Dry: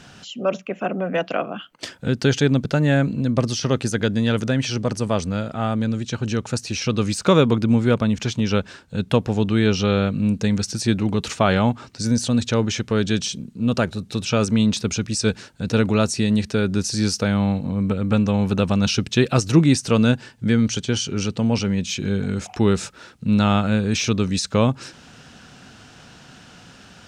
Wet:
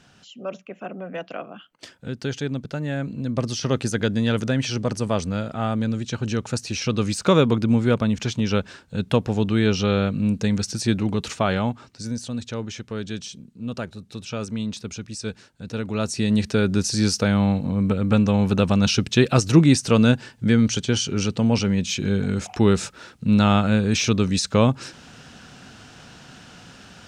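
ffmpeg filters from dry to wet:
-af "volume=9dB,afade=t=in:st=2.96:d=0.82:silence=0.398107,afade=t=out:st=10.98:d=1.23:silence=0.375837,afade=t=in:st=15.86:d=0.59:silence=0.298538"

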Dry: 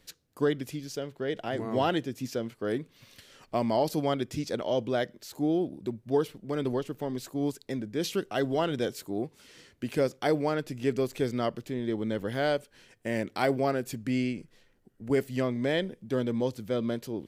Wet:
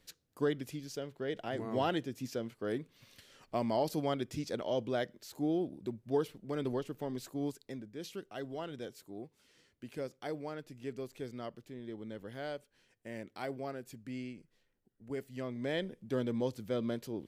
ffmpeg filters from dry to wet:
-af "volume=3dB,afade=t=out:st=7.3:d=0.64:silence=0.398107,afade=t=in:st=15.32:d=0.66:silence=0.375837"

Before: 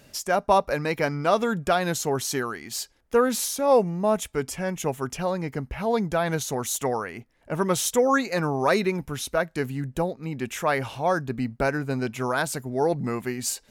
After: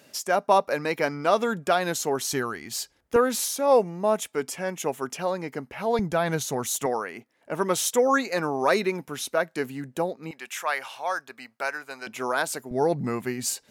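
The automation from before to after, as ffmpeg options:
-af "asetnsamples=n=441:p=0,asendcmd='2.33 highpass f 60;3.16 highpass f 250;5.99 highpass f 110;6.86 highpass f 240;10.31 highpass f 890;12.07 highpass f 320;12.71 highpass f 97',highpass=220"

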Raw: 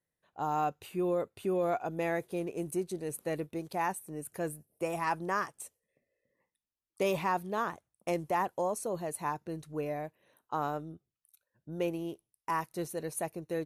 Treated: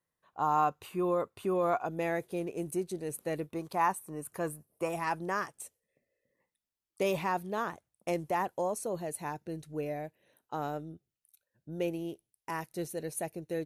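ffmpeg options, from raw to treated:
-af "asetnsamples=n=441:p=0,asendcmd='1.86 equalizer g -1.5;3.5 equalizer g 9.5;4.89 equalizer g -2.5;9.03 equalizer g -9',equalizer=f=1.1k:t=o:w=0.52:g=10"

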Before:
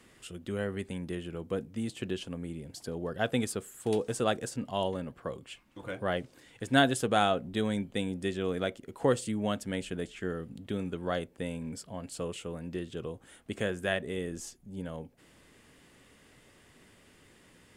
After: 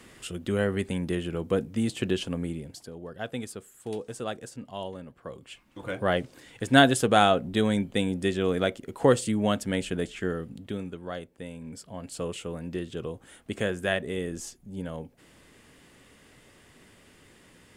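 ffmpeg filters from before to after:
-af "volume=26dB,afade=t=out:st=2.42:d=0.47:silence=0.237137,afade=t=in:st=5.19:d=0.87:silence=0.281838,afade=t=out:st=10.14:d=0.87:silence=0.316228,afade=t=in:st=11.55:d=0.73:silence=0.421697"

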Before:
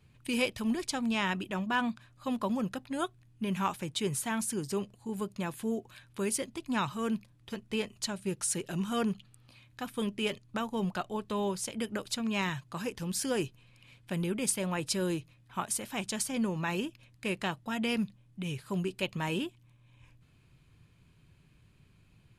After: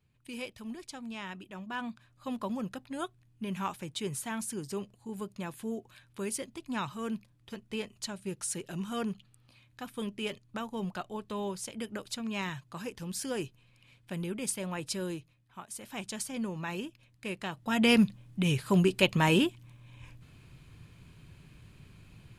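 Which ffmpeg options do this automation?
-af "volume=18dB,afade=t=in:st=1.51:d=0.76:silence=0.446684,afade=t=out:st=14.95:d=0.73:silence=0.334965,afade=t=in:st=15.68:d=0.24:silence=0.354813,afade=t=in:st=17.51:d=0.4:silence=0.237137"

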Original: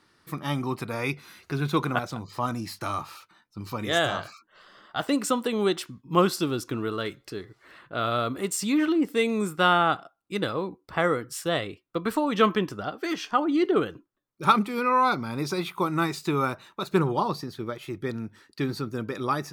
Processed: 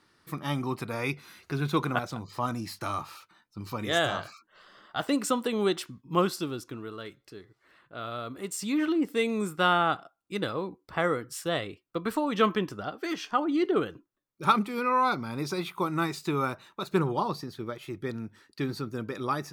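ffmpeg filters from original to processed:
-af "volume=5dB,afade=t=out:st=5.87:d=0.95:silence=0.398107,afade=t=in:st=8.23:d=0.67:silence=0.446684"

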